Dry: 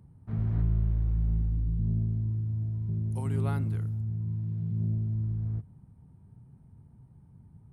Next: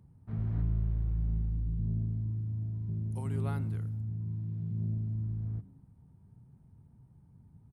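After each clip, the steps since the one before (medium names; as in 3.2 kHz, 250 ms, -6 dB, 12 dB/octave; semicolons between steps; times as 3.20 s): frequency-shifting echo 104 ms, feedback 36%, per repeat +82 Hz, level -23 dB; trim -4 dB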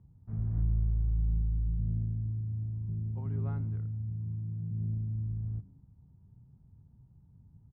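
low-pass 1.6 kHz 12 dB/octave; bass shelf 130 Hz +10.5 dB; trim -6 dB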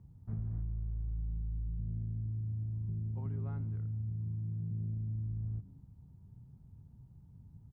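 compression 6:1, threshold -37 dBFS, peak gain reduction 12.5 dB; trim +2.5 dB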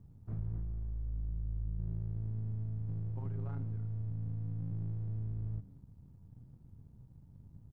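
partial rectifier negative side -7 dB; trim +2 dB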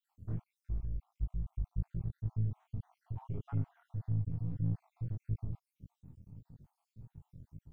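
random holes in the spectrogram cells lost 62%; chorus 1.7 Hz, delay 18 ms, depth 7 ms; trim +7.5 dB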